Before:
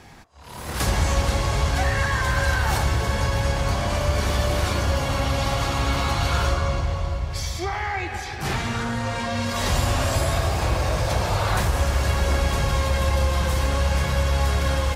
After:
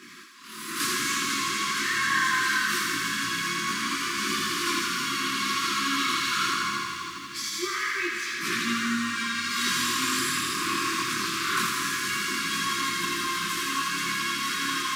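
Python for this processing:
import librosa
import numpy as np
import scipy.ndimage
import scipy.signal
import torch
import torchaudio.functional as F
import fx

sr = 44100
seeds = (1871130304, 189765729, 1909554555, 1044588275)

y = fx.law_mismatch(x, sr, coded='mu')
y = scipy.signal.sosfilt(scipy.signal.butter(4, 230.0, 'highpass', fs=sr, output='sos'), y)
y = fx.chorus_voices(y, sr, voices=2, hz=0.23, base_ms=21, depth_ms=3.9, mix_pct=50)
y = fx.brickwall_bandstop(y, sr, low_hz=390.0, high_hz=1000.0)
y = fx.echo_thinned(y, sr, ms=82, feedback_pct=79, hz=770.0, wet_db=-4.5)
y = y * 10.0 ** (2.5 / 20.0)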